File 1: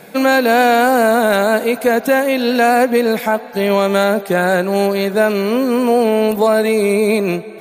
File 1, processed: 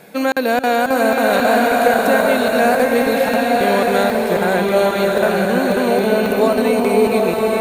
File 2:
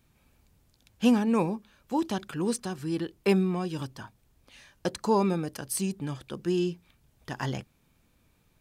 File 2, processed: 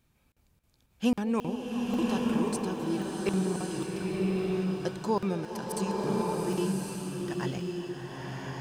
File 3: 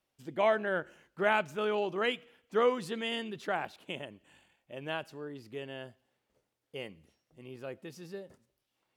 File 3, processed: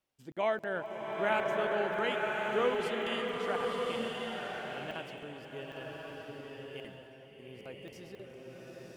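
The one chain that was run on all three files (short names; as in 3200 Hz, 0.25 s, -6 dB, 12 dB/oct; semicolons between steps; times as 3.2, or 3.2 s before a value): delay with a stepping band-pass 0.198 s, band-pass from 480 Hz, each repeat 0.7 oct, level -11 dB; crackling interface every 0.27 s, samples 2048, zero, from 0.32; bloom reverb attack 1.14 s, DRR -2 dB; gain -4 dB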